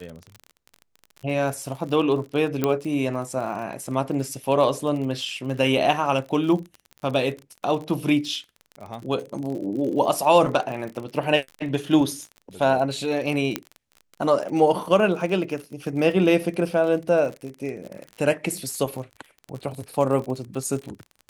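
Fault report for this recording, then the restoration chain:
surface crackle 38 per second −31 dBFS
0:02.64: click −8 dBFS
0:13.56: click −8 dBFS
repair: click removal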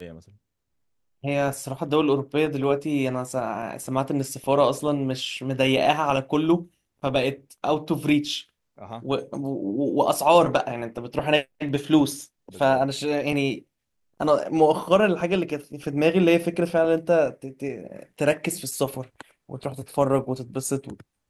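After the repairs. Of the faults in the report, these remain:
0:02.64: click

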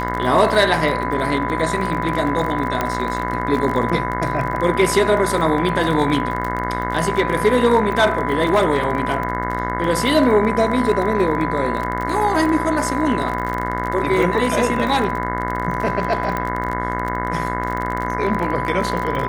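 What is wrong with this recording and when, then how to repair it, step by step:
mains buzz 60 Hz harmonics 36 −25 dBFS
surface crackle 31 per second −23 dBFS
whistle 1,000 Hz −24 dBFS
0:02.81: click −6 dBFS
0:16.37: click −11 dBFS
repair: click removal
hum removal 60 Hz, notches 36
notch filter 1,000 Hz, Q 30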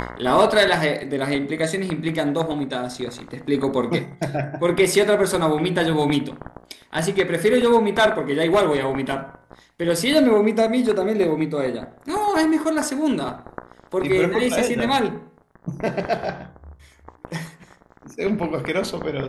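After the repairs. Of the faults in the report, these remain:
none of them is left

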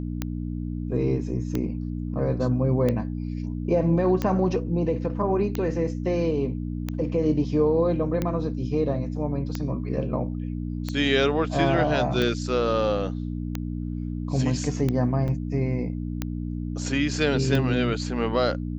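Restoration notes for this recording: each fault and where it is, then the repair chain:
mains hum 60 Hz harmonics 5 −30 dBFS
scratch tick 45 rpm −13 dBFS
0:15.28–0:15.29: drop-out 5.7 ms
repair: click removal
hum removal 60 Hz, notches 5
repair the gap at 0:15.28, 5.7 ms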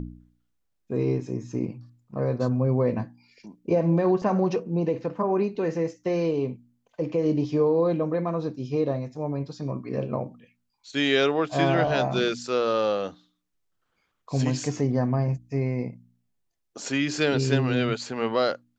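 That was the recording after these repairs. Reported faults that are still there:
none of them is left

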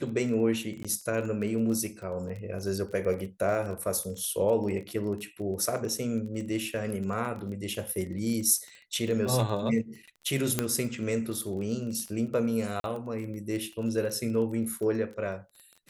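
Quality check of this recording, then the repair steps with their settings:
surface crackle 23 per second −35 dBFS
0:00.83–0:00.85: drop-out 16 ms
0:10.59: click −10 dBFS
0:12.80–0:12.84: drop-out 42 ms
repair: click removal
repair the gap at 0:00.83, 16 ms
repair the gap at 0:12.80, 42 ms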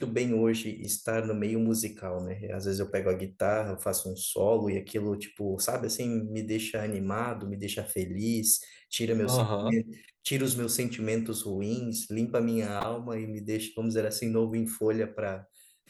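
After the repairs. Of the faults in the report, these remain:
none of them is left

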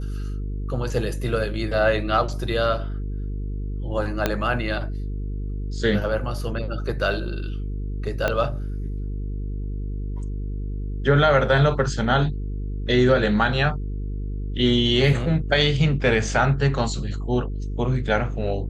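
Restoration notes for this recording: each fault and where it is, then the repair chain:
mains buzz 50 Hz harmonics 9 −28 dBFS
0:04.26: click −6 dBFS
0:08.28: click −9 dBFS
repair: click removal
hum removal 50 Hz, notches 9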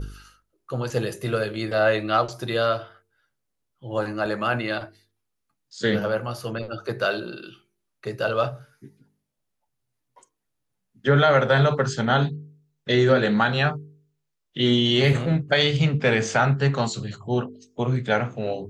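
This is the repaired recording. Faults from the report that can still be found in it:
0:04.26: click
0:08.28: click

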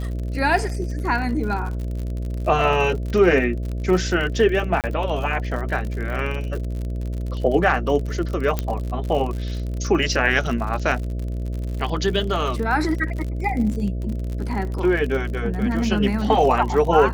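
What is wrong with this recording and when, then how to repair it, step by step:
mains buzz 60 Hz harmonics 11 −26 dBFS
surface crackle 59 per second −28 dBFS
0:04.81–0:04.84: drop-out 28 ms
0:08.59: click −8 dBFS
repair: click removal
hum removal 60 Hz, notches 11
repair the gap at 0:04.81, 28 ms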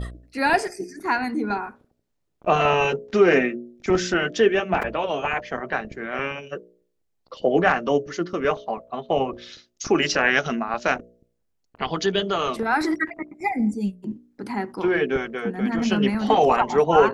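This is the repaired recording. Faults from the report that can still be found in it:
none of them is left

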